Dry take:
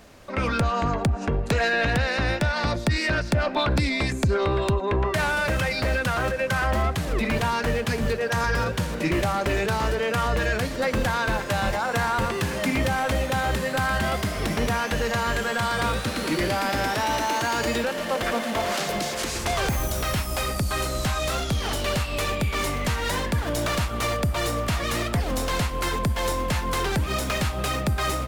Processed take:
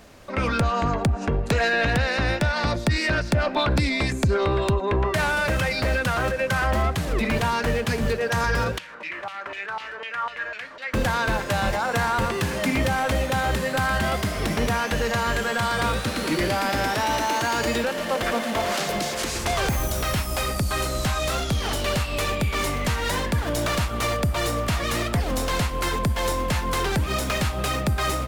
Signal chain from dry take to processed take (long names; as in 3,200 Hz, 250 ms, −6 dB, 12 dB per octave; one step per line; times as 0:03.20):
0:08.78–0:10.94: auto-filter band-pass saw down 4 Hz 940–3,100 Hz
level +1 dB